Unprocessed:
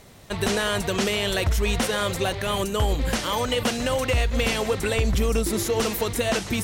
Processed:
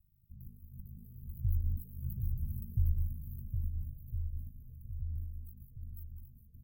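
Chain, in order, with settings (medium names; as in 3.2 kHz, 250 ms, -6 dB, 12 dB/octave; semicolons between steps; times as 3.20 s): Doppler pass-by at 2.28 s, 7 m/s, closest 3.9 m; inverse Chebyshev band-stop 780–7100 Hz, stop band 70 dB; amplifier tone stack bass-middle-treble 10-0-10; ring modulator 26 Hz; delay 764 ms -5.5 dB; trim +8 dB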